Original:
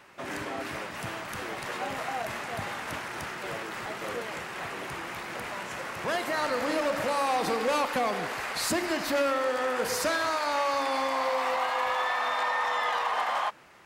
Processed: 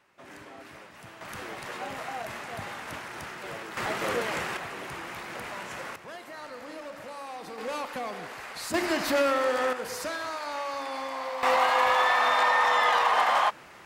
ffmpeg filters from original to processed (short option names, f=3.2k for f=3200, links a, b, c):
-af "asetnsamples=n=441:p=0,asendcmd='1.21 volume volume -3dB;3.77 volume volume 5.5dB;4.57 volume volume -1.5dB;5.96 volume volume -13dB;7.58 volume volume -7dB;8.74 volume volume 2dB;9.73 volume volume -6dB;11.43 volume volume 5.5dB',volume=-11.5dB"